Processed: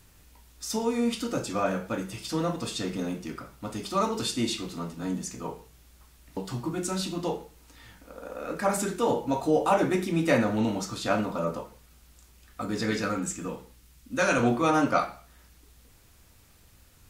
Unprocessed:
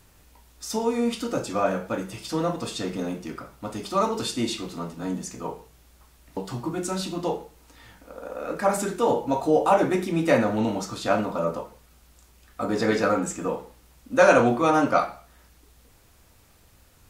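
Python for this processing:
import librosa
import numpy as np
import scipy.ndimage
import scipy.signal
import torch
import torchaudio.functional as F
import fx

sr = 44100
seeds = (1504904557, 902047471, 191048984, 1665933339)

y = fx.peak_eq(x, sr, hz=680.0, db=fx.steps((0.0, -4.5), (12.62, -12.0), (14.43, -4.5)), octaves=2.0)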